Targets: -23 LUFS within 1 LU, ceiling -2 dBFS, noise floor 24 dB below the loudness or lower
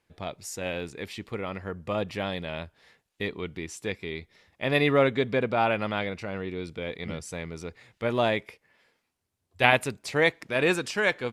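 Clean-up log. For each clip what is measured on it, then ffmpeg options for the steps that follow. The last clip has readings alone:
loudness -28.0 LUFS; peak -2.5 dBFS; loudness target -23.0 LUFS
-> -af "volume=5dB,alimiter=limit=-2dB:level=0:latency=1"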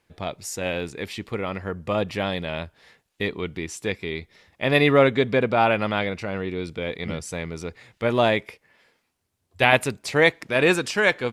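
loudness -23.5 LUFS; peak -2.0 dBFS; noise floor -74 dBFS

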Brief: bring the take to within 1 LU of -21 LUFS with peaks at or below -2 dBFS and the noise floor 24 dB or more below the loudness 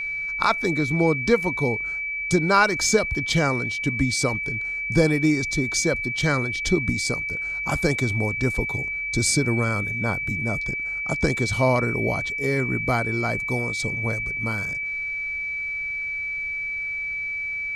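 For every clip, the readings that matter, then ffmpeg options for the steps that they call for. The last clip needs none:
steady tone 2300 Hz; tone level -26 dBFS; loudness -23.0 LUFS; peak -4.0 dBFS; loudness target -21.0 LUFS
-> -af "bandreject=f=2.3k:w=30"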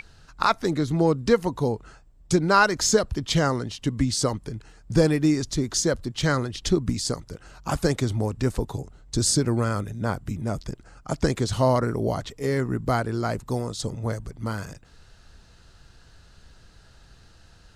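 steady tone none; loudness -25.0 LUFS; peak -5.0 dBFS; loudness target -21.0 LUFS
-> -af "volume=4dB,alimiter=limit=-2dB:level=0:latency=1"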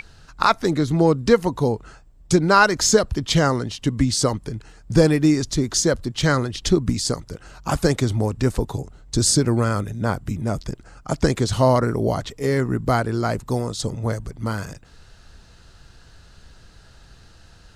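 loudness -21.0 LUFS; peak -2.0 dBFS; noise floor -49 dBFS

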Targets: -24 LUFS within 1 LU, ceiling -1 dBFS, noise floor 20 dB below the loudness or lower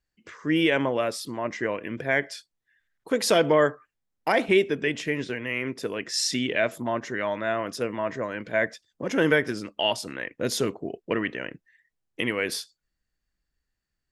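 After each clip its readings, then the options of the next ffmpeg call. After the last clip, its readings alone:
loudness -26.5 LUFS; peak -8.0 dBFS; loudness target -24.0 LUFS
-> -af "volume=2.5dB"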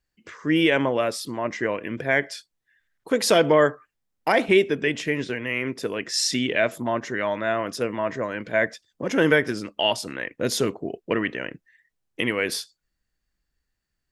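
loudness -24.0 LUFS; peak -5.5 dBFS; noise floor -80 dBFS

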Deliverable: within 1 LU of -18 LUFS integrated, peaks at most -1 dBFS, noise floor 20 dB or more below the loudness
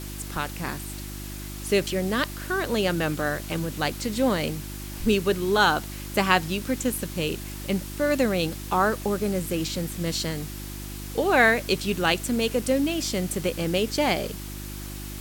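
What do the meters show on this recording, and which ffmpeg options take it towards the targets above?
hum 50 Hz; harmonics up to 350 Hz; hum level -35 dBFS; noise floor -36 dBFS; noise floor target -46 dBFS; loudness -25.5 LUFS; peak -3.5 dBFS; loudness target -18.0 LUFS
-> -af "bandreject=f=50:t=h:w=4,bandreject=f=100:t=h:w=4,bandreject=f=150:t=h:w=4,bandreject=f=200:t=h:w=4,bandreject=f=250:t=h:w=4,bandreject=f=300:t=h:w=4,bandreject=f=350:t=h:w=4"
-af "afftdn=nr=10:nf=-36"
-af "volume=7.5dB,alimiter=limit=-1dB:level=0:latency=1"

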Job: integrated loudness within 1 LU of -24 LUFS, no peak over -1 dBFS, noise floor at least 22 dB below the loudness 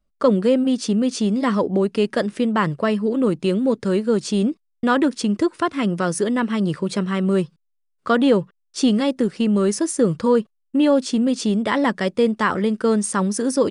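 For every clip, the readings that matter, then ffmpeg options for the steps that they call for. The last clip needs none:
loudness -20.5 LUFS; peak -6.0 dBFS; loudness target -24.0 LUFS
-> -af "volume=-3.5dB"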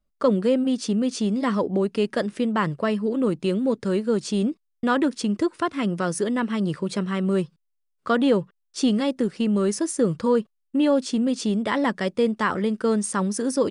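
loudness -24.0 LUFS; peak -9.5 dBFS; noise floor -74 dBFS

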